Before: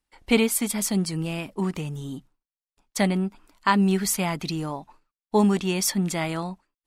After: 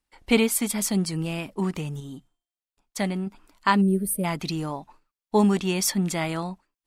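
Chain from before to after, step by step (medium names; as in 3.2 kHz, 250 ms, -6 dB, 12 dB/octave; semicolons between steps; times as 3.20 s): 2.00–3.27 s: feedback comb 350 Hz, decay 0.77 s, mix 40%; 3.81–4.24 s: time-frequency box 630–8100 Hz -25 dB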